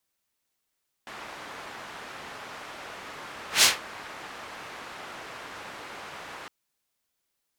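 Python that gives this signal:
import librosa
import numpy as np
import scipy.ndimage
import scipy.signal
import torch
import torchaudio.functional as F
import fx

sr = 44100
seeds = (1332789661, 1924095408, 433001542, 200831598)

y = fx.whoosh(sr, seeds[0], length_s=5.41, peak_s=2.56, rise_s=0.14, fall_s=0.18, ends_hz=1300.0, peak_hz=5100.0, q=0.74, swell_db=25.0)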